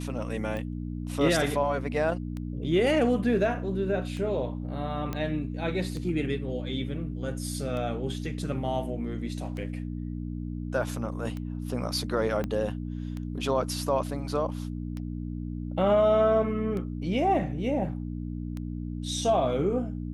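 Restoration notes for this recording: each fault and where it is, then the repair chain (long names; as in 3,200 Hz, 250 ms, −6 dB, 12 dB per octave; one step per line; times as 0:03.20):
mains hum 60 Hz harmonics 5 −34 dBFS
scratch tick 33 1/3 rpm −24 dBFS
0:05.13: click −18 dBFS
0:12.44: click −18 dBFS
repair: click removal
hum removal 60 Hz, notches 5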